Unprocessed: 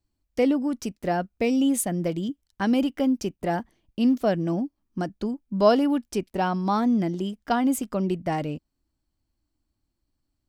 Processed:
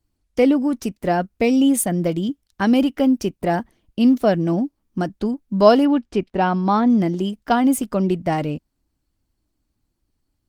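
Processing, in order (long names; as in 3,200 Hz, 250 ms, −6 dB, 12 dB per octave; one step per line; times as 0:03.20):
0:05.85–0:06.90: low-pass filter 3,900 Hz 12 dB per octave
level +6 dB
Opus 24 kbit/s 48,000 Hz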